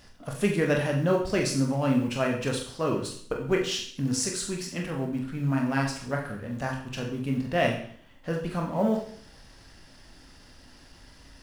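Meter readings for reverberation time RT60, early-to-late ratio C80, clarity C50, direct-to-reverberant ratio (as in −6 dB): 0.60 s, 10.0 dB, 6.5 dB, 0.0 dB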